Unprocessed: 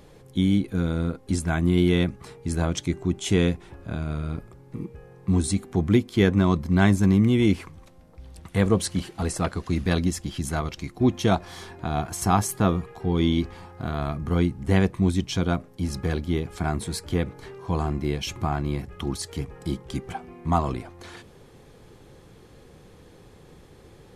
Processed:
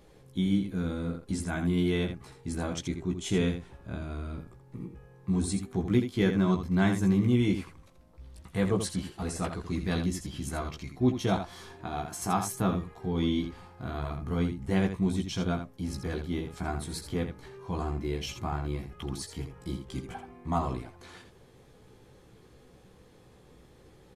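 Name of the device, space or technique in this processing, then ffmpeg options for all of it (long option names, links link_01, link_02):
slapback doubling: -filter_complex "[0:a]asettb=1/sr,asplit=3[link_01][link_02][link_03];[link_01]atrim=end=11.824[link_04];[link_02]atrim=start=11.82:end=12.53,asetpts=PTS-STARTPTS,afade=type=in:duration=0.004:curve=qsin,afade=type=out:start_time=0.706:duration=0.004:curve=qsin,lowshelf=frequency=130:gain=-8[link_05];[link_03]atrim=start=12.526[link_06];[link_04][link_05]acrossfade=duration=0.004:curve1=hsin:curve2=qsin[link_07];[link_07][link_06]acrossfade=duration=0.004:curve1=qsin:curve2=hsin,asplit=3[link_08][link_09][link_10];[link_09]adelay=16,volume=-4dB[link_11];[link_10]adelay=82,volume=-7.5dB[link_12];[link_08][link_11][link_12]amix=inputs=3:normalize=0,volume=-8dB"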